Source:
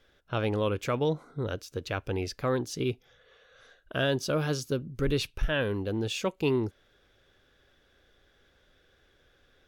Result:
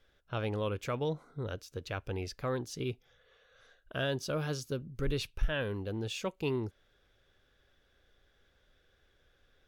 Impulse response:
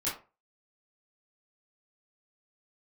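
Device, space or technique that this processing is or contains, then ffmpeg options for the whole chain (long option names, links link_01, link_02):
low shelf boost with a cut just above: -af "lowshelf=frequency=62:gain=5.5,equalizer=frequency=300:width_type=o:width=0.77:gain=-2.5,volume=-5.5dB"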